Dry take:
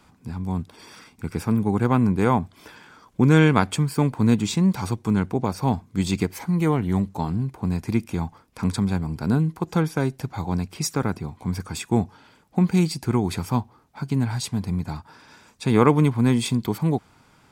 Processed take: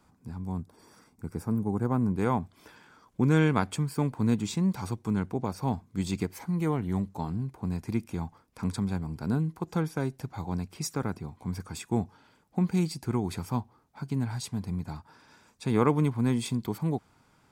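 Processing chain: bell 2900 Hz -7 dB 1.4 oct, from 0.6 s -15 dB, from 2.15 s -2.5 dB; gain -7 dB

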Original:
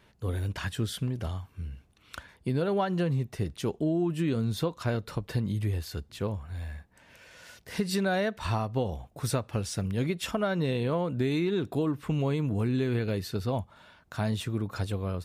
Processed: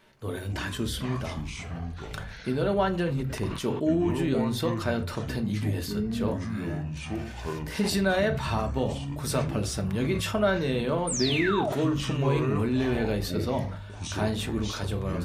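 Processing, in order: low shelf 120 Hz -7 dB; notches 60/120/180/240/300 Hz; painted sound fall, 11.07–11.7, 550–9600 Hz -33 dBFS; on a send at -5 dB: reverb RT60 0.35 s, pre-delay 3 ms; on the sum: echoes that change speed 0.17 s, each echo -7 st, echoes 3, each echo -6 dB; sustainer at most 59 dB/s; gain +1.5 dB

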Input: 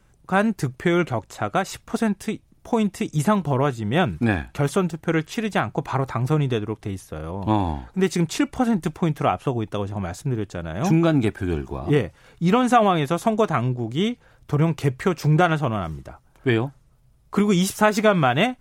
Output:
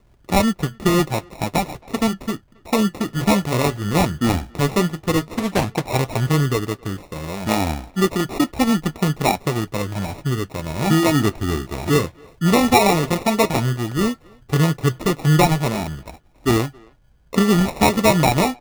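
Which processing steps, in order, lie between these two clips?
14.51–14.88 spectral repair 1400–5400 Hz; sample-and-hold 28×; flange 0.12 Hz, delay 2.8 ms, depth 9.5 ms, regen -61%; speakerphone echo 0.27 s, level -26 dB; 5.25–5.83 Doppler distortion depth 0.38 ms; gain +6.5 dB

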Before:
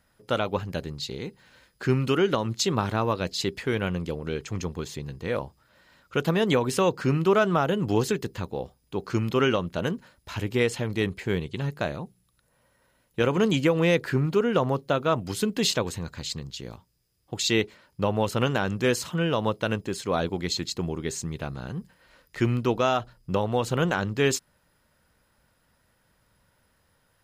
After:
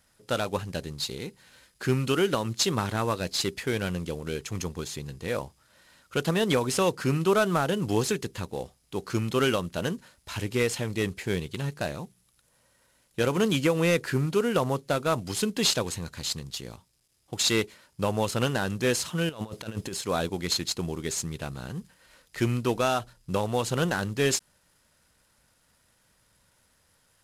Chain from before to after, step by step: CVSD 64 kbps; high shelf 3200 Hz +7 dB; 19.29–19.93 negative-ratio compressor -32 dBFS, ratio -0.5; gain -2 dB

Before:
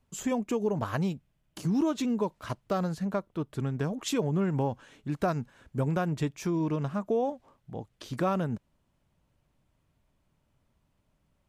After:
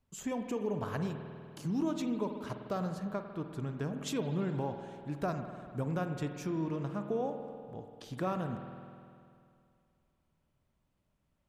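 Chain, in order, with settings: spring tank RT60 2.4 s, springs 49 ms, chirp 35 ms, DRR 6 dB; gain -6.5 dB

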